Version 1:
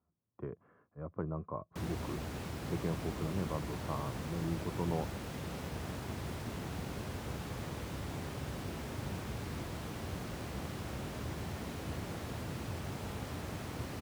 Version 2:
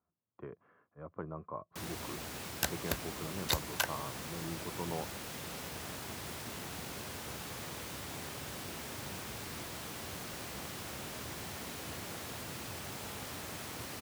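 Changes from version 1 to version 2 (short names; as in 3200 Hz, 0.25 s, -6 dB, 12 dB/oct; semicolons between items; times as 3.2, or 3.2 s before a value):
second sound: unmuted; master: add tilt +2.5 dB/oct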